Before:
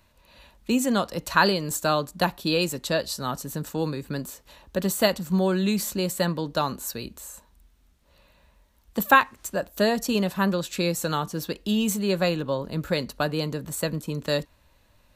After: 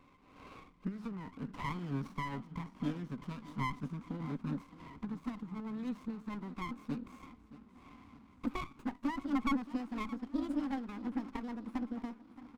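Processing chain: speed glide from 77% -> 164%; harmonic-percussive split harmonic +6 dB; limiter -13 dBFS, peak gain reduction 11.5 dB; compressor 5:1, threshold -37 dBFS, peak gain reduction 17.5 dB; double band-pass 610 Hz, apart 2.2 oct; formant shift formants -4 st; notch 860 Hz, Q 12; on a send: feedback echo 0.621 s, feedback 57%, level -17 dB; on the sum: running maximum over 17 samples; gain +11.5 dB

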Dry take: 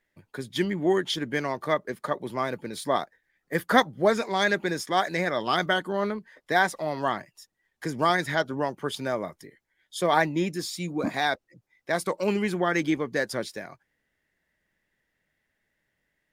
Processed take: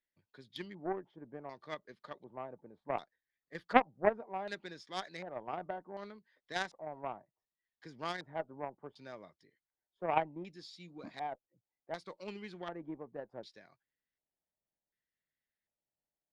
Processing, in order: LFO low-pass square 0.67 Hz 800–4300 Hz; added harmonics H 2 -27 dB, 3 -11 dB, 4 -34 dB, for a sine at -2.5 dBFS; gain -5 dB

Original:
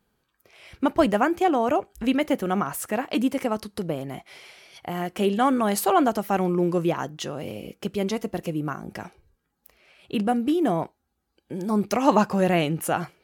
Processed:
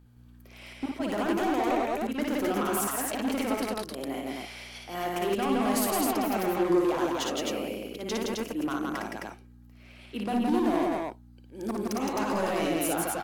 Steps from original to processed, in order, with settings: auto swell 0.159 s; Chebyshev high-pass 250 Hz, order 3; limiter -19.5 dBFS, peak gain reduction 11 dB; hard clip -26.5 dBFS, distortion -11 dB; hum 60 Hz, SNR 22 dB; loudspeakers at several distances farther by 20 m -3 dB, 57 m -2 dB, 90 m -2 dB

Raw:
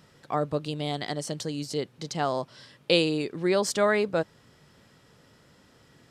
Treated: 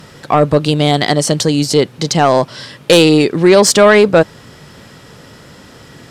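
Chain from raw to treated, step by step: in parallel at 0 dB: limiter -18.5 dBFS, peak gain reduction 10 dB; on the sum: sine folder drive 5 dB, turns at -6 dBFS; gain +4.5 dB

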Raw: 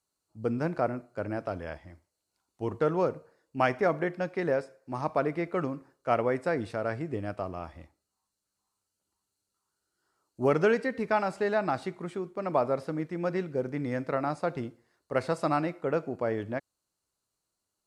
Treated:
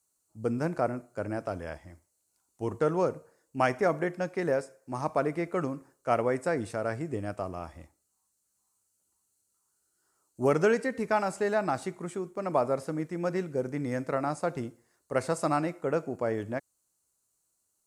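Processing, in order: resonant high shelf 5500 Hz +8.5 dB, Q 1.5

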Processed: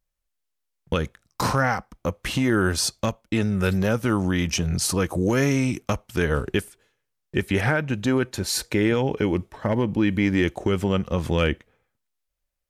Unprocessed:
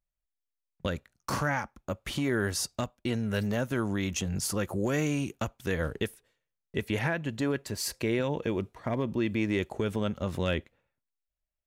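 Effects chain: speed mistake 48 kHz file played as 44.1 kHz; gain +7.5 dB

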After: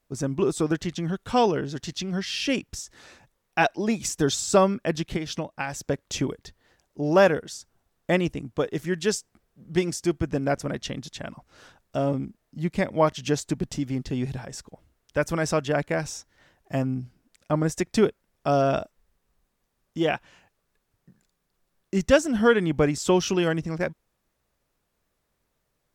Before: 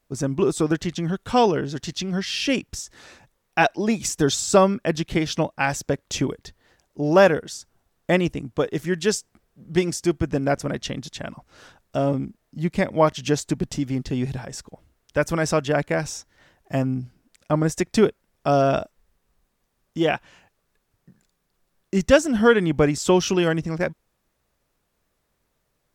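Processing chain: 5.16–5.87 compressor, threshold -23 dBFS, peak gain reduction 7.5 dB; gain -3 dB

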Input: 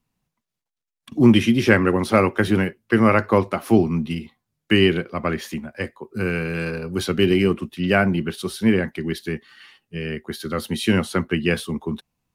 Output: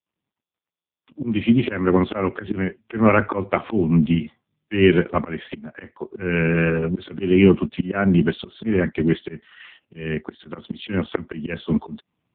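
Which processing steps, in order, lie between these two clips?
opening faded in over 2.82 s; auto swell 0.286 s; maximiser +9 dB; gain -1 dB; AMR-NB 5.15 kbps 8000 Hz

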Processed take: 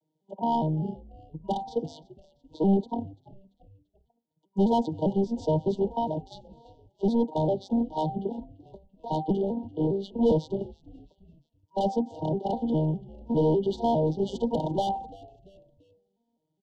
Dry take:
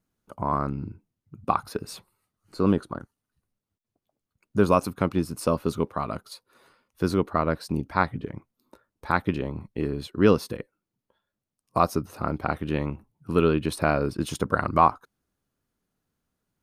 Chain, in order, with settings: arpeggiated vocoder major triad, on D#3, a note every 0.202 s; de-hum 259.7 Hz, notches 8; overdrive pedal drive 27 dB, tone 1800 Hz, clips at -8.5 dBFS; FFT band-reject 960–2900 Hz; frequency-shifting echo 0.34 s, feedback 45%, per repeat -99 Hz, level -21 dB; gain -6 dB

